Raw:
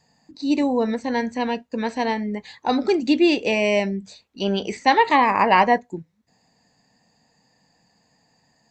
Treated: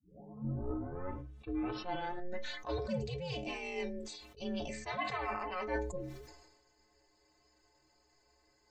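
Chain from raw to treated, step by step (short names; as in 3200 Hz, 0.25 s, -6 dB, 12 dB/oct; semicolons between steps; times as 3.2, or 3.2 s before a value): tape start at the beginning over 2.66 s; reverse; compressor 6:1, threshold -28 dBFS, peak gain reduction 16 dB; reverse; ring modulator 180 Hz; metallic resonator 64 Hz, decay 0.39 s, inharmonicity 0.03; sustainer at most 51 dB/s; gain +4 dB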